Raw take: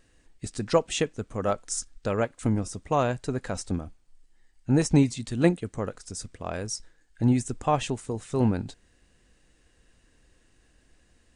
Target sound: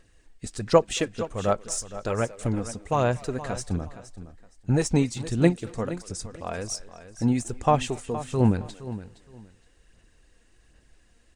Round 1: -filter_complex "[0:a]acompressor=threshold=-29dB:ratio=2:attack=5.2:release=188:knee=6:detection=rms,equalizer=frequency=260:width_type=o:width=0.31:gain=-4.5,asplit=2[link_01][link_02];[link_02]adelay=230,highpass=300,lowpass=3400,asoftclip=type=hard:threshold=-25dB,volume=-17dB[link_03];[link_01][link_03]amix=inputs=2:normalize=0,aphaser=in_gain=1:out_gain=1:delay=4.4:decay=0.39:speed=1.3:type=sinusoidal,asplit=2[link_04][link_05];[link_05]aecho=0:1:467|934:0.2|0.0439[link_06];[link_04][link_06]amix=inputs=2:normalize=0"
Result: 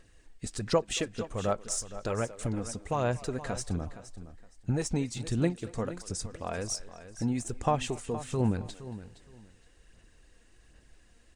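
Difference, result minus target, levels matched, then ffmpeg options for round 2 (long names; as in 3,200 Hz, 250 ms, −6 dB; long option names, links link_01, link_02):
downward compressor: peak gain reduction +10 dB
-filter_complex "[0:a]equalizer=frequency=260:width_type=o:width=0.31:gain=-4.5,asplit=2[link_01][link_02];[link_02]adelay=230,highpass=300,lowpass=3400,asoftclip=type=hard:threshold=-25dB,volume=-17dB[link_03];[link_01][link_03]amix=inputs=2:normalize=0,aphaser=in_gain=1:out_gain=1:delay=4.4:decay=0.39:speed=1.3:type=sinusoidal,asplit=2[link_04][link_05];[link_05]aecho=0:1:467|934:0.2|0.0439[link_06];[link_04][link_06]amix=inputs=2:normalize=0"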